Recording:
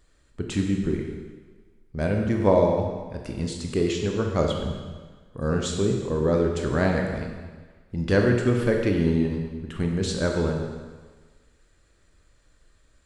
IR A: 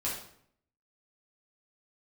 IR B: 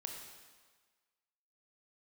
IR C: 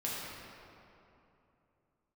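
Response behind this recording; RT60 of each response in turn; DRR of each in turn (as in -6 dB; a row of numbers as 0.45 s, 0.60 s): B; 0.65 s, 1.4 s, 2.9 s; -7.5 dB, 1.5 dB, -7.0 dB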